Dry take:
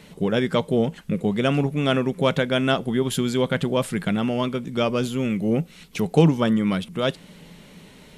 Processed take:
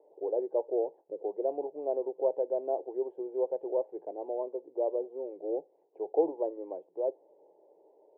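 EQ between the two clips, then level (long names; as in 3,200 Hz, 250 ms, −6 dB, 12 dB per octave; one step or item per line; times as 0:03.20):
elliptic band-pass filter 330–880 Hz, stop band 70 dB
phaser with its sweep stopped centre 540 Hz, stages 4
−5.0 dB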